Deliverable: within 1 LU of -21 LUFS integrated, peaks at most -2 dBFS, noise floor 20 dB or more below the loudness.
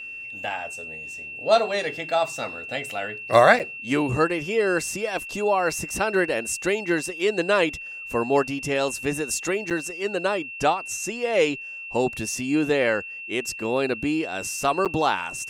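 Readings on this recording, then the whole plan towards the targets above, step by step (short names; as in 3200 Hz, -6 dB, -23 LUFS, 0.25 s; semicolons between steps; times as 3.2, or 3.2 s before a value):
dropouts 3; longest dropout 7.6 ms; steady tone 2700 Hz; tone level -34 dBFS; loudness -24.0 LUFS; peak -2.0 dBFS; loudness target -21.0 LUFS
-> interpolate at 3.59/9.7/14.85, 7.6 ms; notch 2700 Hz, Q 30; gain +3 dB; limiter -2 dBFS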